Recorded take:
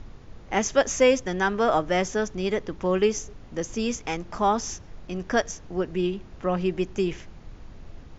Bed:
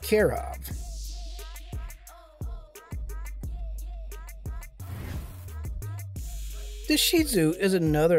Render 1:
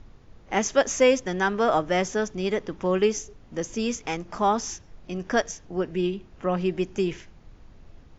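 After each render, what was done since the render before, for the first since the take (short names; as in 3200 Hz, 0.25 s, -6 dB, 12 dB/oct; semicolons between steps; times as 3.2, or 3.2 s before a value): noise print and reduce 6 dB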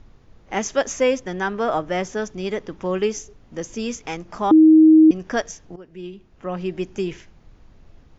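0.93–2.17 high shelf 4200 Hz -5 dB; 4.51–5.11 bleep 315 Hz -7 dBFS; 5.76–6.83 fade in, from -18 dB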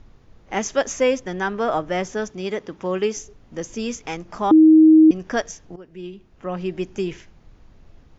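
2.29–3.17 HPF 130 Hz 6 dB/oct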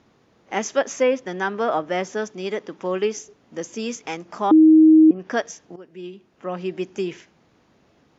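HPF 200 Hz 12 dB/oct; treble ducked by the level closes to 1000 Hz, closed at -10 dBFS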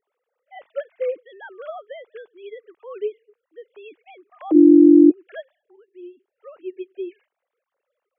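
sine-wave speech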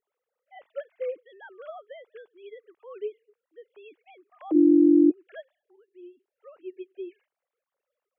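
gain -7 dB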